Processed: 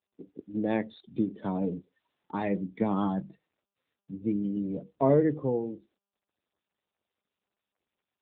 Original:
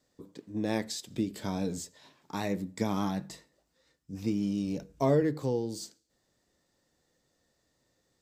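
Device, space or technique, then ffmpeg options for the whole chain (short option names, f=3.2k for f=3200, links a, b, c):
mobile call with aggressive noise cancelling: -filter_complex "[0:a]asplit=3[a][b][c];[a]afade=t=out:st=1.83:d=0.02[d];[b]highshelf=f=7.6k:g=4.5,afade=t=in:st=1.83:d=0.02,afade=t=out:st=3.13:d=0.02[e];[c]afade=t=in:st=3.13:d=0.02[f];[d][e][f]amix=inputs=3:normalize=0,highpass=130,afftdn=nr=30:nf=-42,volume=3.5dB" -ar 8000 -c:a libopencore_amrnb -b:a 10200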